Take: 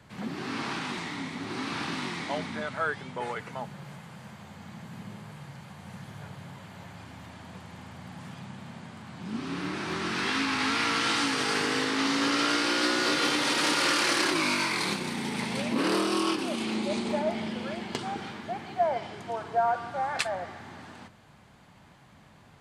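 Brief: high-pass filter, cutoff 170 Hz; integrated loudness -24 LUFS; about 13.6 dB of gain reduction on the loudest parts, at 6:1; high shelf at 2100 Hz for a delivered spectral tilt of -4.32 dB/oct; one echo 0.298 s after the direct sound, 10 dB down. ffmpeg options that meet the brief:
-af "highpass=170,highshelf=f=2.1k:g=-6.5,acompressor=threshold=-36dB:ratio=6,aecho=1:1:298:0.316,volume=16dB"

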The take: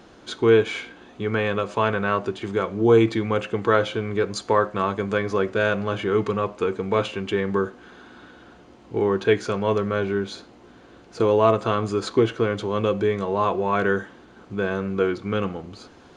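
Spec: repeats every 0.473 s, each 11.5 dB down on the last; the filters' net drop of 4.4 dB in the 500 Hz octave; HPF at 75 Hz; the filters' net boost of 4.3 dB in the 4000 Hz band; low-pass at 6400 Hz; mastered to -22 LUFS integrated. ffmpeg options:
-af "highpass=75,lowpass=6.4k,equalizer=f=500:t=o:g=-5.5,equalizer=f=4k:t=o:g=6,aecho=1:1:473|946|1419:0.266|0.0718|0.0194,volume=3dB"

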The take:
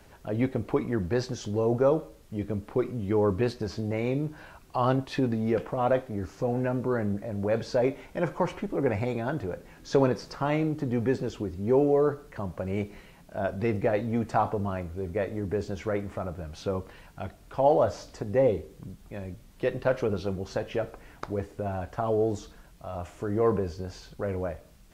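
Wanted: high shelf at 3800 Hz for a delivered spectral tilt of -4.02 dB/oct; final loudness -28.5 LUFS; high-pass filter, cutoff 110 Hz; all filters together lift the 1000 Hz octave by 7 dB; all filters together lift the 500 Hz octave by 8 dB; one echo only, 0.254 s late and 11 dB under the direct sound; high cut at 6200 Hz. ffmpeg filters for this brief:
-af "highpass=110,lowpass=6.2k,equalizer=f=500:t=o:g=8,equalizer=f=1k:t=o:g=5.5,highshelf=f=3.8k:g=7,aecho=1:1:254:0.282,volume=-6.5dB"

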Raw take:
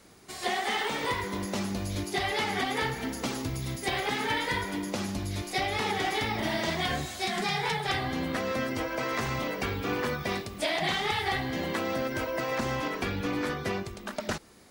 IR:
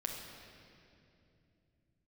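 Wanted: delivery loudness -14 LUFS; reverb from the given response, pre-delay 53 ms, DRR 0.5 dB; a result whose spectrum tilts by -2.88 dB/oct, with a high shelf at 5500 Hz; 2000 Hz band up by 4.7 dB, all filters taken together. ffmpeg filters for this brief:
-filter_complex "[0:a]equalizer=f=2k:t=o:g=6.5,highshelf=f=5.5k:g=-9,asplit=2[a][b];[1:a]atrim=start_sample=2205,adelay=53[c];[b][c]afir=irnorm=-1:irlink=0,volume=-1.5dB[d];[a][d]amix=inputs=2:normalize=0,volume=11.5dB"

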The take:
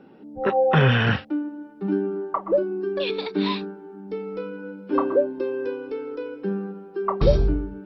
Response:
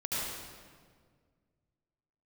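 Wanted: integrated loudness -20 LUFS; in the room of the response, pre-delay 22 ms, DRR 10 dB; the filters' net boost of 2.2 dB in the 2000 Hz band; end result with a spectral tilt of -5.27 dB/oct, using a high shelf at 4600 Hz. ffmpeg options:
-filter_complex "[0:a]equalizer=f=2k:t=o:g=4,highshelf=f=4.6k:g=-6,asplit=2[a][b];[1:a]atrim=start_sample=2205,adelay=22[c];[b][c]afir=irnorm=-1:irlink=0,volume=-16dB[d];[a][d]amix=inputs=2:normalize=0,volume=4dB"

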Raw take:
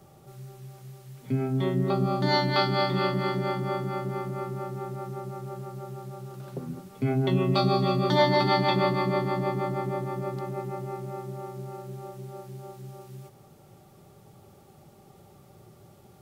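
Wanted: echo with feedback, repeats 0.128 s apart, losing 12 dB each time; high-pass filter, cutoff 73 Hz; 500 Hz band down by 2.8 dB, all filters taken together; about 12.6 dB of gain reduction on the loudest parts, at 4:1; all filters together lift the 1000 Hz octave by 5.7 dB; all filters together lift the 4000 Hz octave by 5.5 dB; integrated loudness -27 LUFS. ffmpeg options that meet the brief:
-af "highpass=73,equalizer=f=500:t=o:g=-6.5,equalizer=f=1k:t=o:g=9,equalizer=f=4k:t=o:g=6,acompressor=threshold=-30dB:ratio=4,aecho=1:1:128|256|384:0.251|0.0628|0.0157,volume=7dB"

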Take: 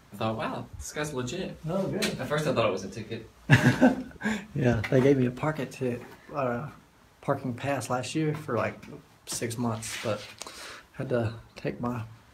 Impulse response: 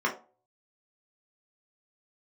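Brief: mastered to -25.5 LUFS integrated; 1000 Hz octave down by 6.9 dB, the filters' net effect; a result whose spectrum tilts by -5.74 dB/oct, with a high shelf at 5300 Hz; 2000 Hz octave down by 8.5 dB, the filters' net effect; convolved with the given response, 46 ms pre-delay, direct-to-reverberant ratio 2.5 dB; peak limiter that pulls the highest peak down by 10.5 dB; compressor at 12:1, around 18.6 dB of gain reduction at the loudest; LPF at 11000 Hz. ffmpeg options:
-filter_complex "[0:a]lowpass=11k,equalizer=f=1k:t=o:g=-7.5,equalizer=f=2k:t=o:g=-7.5,highshelf=f=5.3k:g=-7,acompressor=threshold=-33dB:ratio=12,alimiter=level_in=6dB:limit=-24dB:level=0:latency=1,volume=-6dB,asplit=2[a][b];[1:a]atrim=start_sample=2205,adelay=46[c];[b][c]afir=irnorm=-1:irlink=0,volume=-14dB[d];[a][d]amix=inputs=2:normalize=0,volume=14.5dB"

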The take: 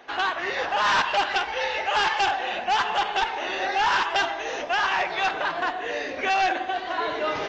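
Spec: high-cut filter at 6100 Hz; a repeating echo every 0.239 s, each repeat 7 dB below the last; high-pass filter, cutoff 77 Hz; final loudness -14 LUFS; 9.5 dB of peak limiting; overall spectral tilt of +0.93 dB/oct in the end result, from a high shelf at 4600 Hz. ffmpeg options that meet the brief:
-af "highpass=77,lowpass=6.1k,highshelf=f=4.6k:g=-4.5,alimiter=limit=-23.5dB:level=0:latency=1,aecho=1:1:239|478|717|956|1195:0.447|0.201|0.0905|0.0407|0.0183,volume=15.5dB"

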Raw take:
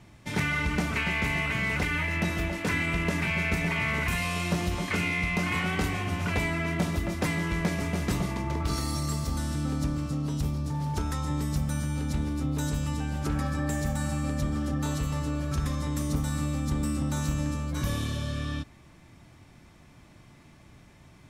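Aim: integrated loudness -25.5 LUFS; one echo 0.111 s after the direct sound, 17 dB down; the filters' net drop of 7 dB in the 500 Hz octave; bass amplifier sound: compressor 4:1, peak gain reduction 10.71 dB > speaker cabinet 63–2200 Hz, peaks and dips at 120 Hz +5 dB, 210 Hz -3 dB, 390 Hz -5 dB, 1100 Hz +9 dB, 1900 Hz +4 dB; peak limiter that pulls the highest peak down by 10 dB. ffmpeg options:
-af "equalizer=f=500:t=o:g=-8.5,alimiter=level_in=3dB:limit=-24dB:level=0:latency=1,volume=-3dB,aecho=1:1:111:0.141,acompressor=threshold=-43dB:ratio=4,highpass=f=63:w=0.5412,highpass=f=63:w=1.3066,equalizer=f=120:t=q:w=4:g=5,equalizer=f=210:t=q:w=4:g=-3,equalizer=f=390:t=q:w=4:g=-5,equalizer=f=1.1k:t=q:w=4:g=9,equalizer=f=1.9k:t=q:w=4:g=4,lowpass=f=2.2k:w=0.5412,lowpass=f=2.2k:w=1.3066,volume=19dB"

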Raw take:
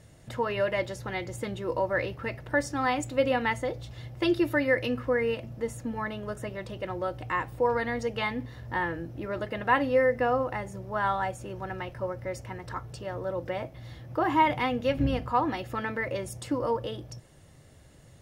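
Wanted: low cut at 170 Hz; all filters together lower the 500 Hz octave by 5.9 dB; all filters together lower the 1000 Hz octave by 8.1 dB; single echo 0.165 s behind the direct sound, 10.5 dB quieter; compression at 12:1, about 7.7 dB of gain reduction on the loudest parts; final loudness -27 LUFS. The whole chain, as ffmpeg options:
-af "highpass=170,equalizer=f=500:t=o:g=-4.5,equalizer=f=1k:t=o:g=-8.5,acompressor=threshold=-31dB:ratio=12,aecho=1:1:165:0.299,volume=10.5dB"

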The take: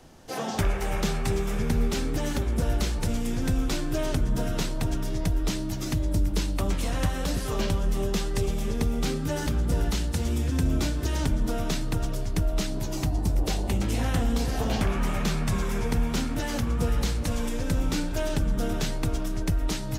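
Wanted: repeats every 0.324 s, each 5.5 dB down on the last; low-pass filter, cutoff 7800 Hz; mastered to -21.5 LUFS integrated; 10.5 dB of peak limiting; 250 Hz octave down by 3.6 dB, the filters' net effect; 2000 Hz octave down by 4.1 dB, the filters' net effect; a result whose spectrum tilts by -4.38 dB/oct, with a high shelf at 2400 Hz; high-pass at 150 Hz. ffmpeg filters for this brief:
-af "highpass=150,lowpass=7.8k,equalizer=f=250:t=o:g=-3.5,equalizer=f=2k:t=o:g=-7.5,highshelf=f=2.4k:g=4,alimiter=level_in=2.5dB:limit=-24dB:level=0:latency=1,volume=-2.5dB,aecho=1:1:324|648|972|1296|1620|1944|2268:0.531|0.281|0.149|0.079|0.0419|0.0222|0.0118,volume=13dB"

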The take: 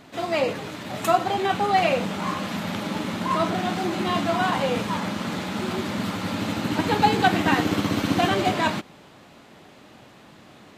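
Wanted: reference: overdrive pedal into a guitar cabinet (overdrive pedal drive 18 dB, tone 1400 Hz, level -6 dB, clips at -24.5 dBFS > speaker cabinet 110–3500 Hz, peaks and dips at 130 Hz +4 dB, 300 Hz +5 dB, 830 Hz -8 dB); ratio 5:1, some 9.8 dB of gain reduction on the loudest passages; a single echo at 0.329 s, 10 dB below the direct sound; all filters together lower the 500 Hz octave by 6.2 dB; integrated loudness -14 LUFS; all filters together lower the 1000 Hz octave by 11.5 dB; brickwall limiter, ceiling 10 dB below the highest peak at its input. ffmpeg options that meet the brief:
-filter_complex "[0:a]equalizer=f=500:t=o:g=-5.5,equalizer=f=1k:t=o:g=-8.5,acompressor=threshold=-30dB:ratio=5,alimiter=level_in=3dB:limit=-24dB:level=0:latency=1,volume=-3dB,aecho=1:1:329:0.316,asplit=2[a][b];[b]highpass=f=720:p=1,volume=18dB,asoftclip=type=tanh:threshold=-24.5dB[c];[a][c]amix=inputs=2:normalize=0,lowpass=f=1.4k:p=1,volume=-6dB,highpass=110,equalizer=f=130:t=q:w=4:g=4,equalizer=f=300:t=q:w=4:g=5,equalizer=f=830:t=q:w=4:g=-8,lowpass=f=3.5k:w=0.5412,lowpass=f=3.5k:w=1.3066,volume=20.5dB"

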